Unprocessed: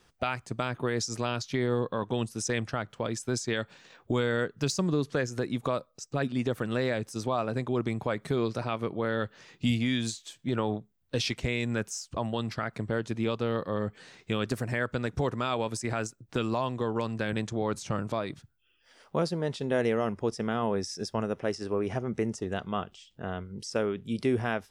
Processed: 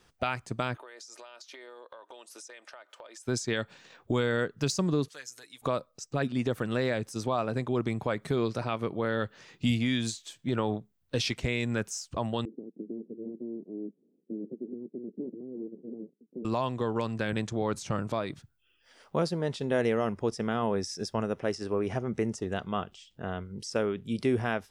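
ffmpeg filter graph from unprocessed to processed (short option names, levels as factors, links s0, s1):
-filter_complex "[0:a]asettb=1/sr,asplit=3[s0][s1][s2];[s0]atrim=end=0.774[s3];[s1]atrim=start=0.77:end=3.26,asetpts=PTS-STARTPTS,afade=t=in:d=0.004:c=qsin,afade=t=out:st=2.486:d=0.004:c=qsin,highpass=f=470:w=0.5412,highpass=f=470:w=1.3066,aecho=1:1:3.3:0.38,atrim=end_sample=109809,acompressor=threshold=0.00631:ratio=10:attack=3.2:release=140:knee=1:detection=peak[s4];[s2]atrim=start=3.256[s5];[s3][s4]acrossfade=d=0.004:c1=hsin:c2=qsin[s6];[s6][s5]acrossfade=d=0.004:c1=qsin:c2=hsin,asettb=1/sr,asplit=3[s7][s8][s9];[s7]atrim=end=5.084[s10];[s8]atrim=start=5.08:end=5.62,asetpts=PTS-STARTPTS,afade=t=in:d=0.004:c=qsin,afade=t=out:st=0.536:d=0.004:c=qsin,acompressor=mode=upward:threshold=0.00708:ratio=2.5:attack=3.2:release=140:knee=2.83:detection=peak,aderivative,aecho=1:1:6.8:0.45,atrim=end_sample=23814[s11];[s9]atrim=start=5.616[s12];[s10][s11]acrossfade=d=0.004:c1=hsin:c2=qsin[s13];[s13][s12]acrossfade=d=0.004:c1=qsin:c2=hsin,asettb=1/sr,asplit=3[s14][s15][s16];[s14]atrim=end=12.454[s17];[s15]atrim=start=12.45:end=16.45,asetpts=PTS-STARTPTS,afade=t=in:d=0.004:c=qsin,afade=t=out:st=3.996:d=0.004:c=qsin,aeval=exprs='abs(val(0))':c=same,asuperpass=centerf=280:order=8:qfactor=1.1[s18];[s16]atrim=start=16.446[s19];[s17][s18]acrossfade=d=0.004:c1=hsin:c2=qsin[s20];[s20][s19]acrossfade=d=0.004:c1=qsin:c2=hsin"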